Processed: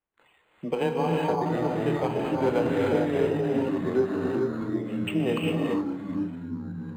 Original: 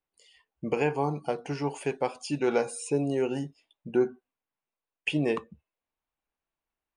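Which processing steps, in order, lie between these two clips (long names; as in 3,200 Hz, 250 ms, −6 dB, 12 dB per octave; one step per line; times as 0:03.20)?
delay with pitch and tempo change per echo 446 ms, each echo −5 semitones, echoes 2, each echo −6 dB
frequency shifter +16 Hz
reverb whose tail is shaped and stops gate 450 ms rising, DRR −2 dB
linearly interpolated sample-rate reduction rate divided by 8×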